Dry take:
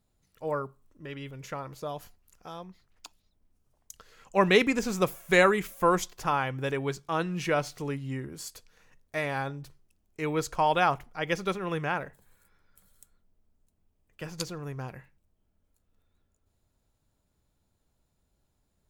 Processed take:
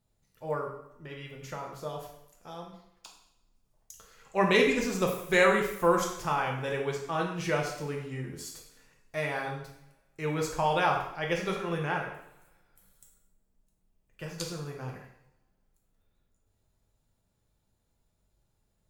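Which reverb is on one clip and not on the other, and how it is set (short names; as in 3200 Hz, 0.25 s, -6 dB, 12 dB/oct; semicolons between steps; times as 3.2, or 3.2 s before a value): two-slope reverb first 0.67 s, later 1.8 s, from -23 dB, DRR -0.5 dB; gain -4 dB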